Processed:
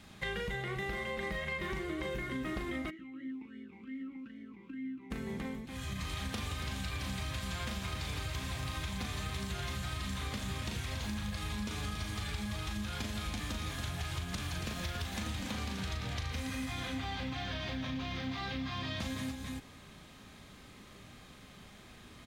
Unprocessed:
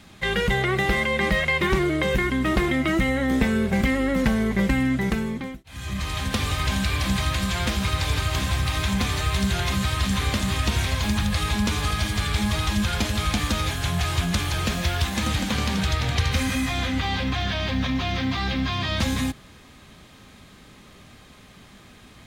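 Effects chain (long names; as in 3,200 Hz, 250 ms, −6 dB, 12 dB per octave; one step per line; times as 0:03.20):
loudspeakers that aren't time-aligned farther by 13 metres −5 dB, 96 metres −8 dB
downward compressor 6 to 1, threshold −28 dBFS, peak gain reduction 13 dB
0:02.89–0:05.10: formant filter swept between two vowels i-u 3.4 Hz → 1.9 Hz
level −7 dB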